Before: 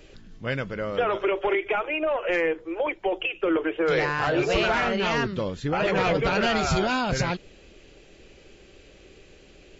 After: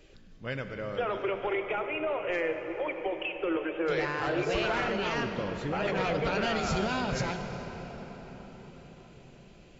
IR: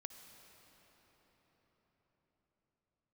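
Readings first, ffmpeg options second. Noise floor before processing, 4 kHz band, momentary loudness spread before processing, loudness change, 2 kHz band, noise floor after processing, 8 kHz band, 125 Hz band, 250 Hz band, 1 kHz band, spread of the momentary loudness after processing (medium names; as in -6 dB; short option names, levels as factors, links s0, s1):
-52 dBFS, -6.5 dB, 7 LU, -6.0 dB, -6.5 dB, -53 dBFS, no reading, -5.5 dB, -5.5 dB, -6.0 dB, 15 LU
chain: -filter_complex "[1:a]atrim=start_sample=2205[s0];[0:a][s0]afir=irnorm=-1:irlink=0,volume=0.841"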